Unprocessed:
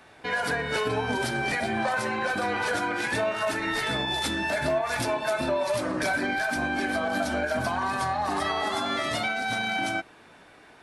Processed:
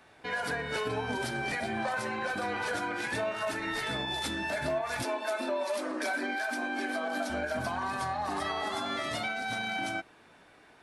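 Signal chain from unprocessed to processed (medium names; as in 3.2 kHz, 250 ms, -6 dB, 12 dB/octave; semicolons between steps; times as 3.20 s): 5.03–7.30 s: brick-wall FIR high-pass 210 Hz; trim -5.5 dB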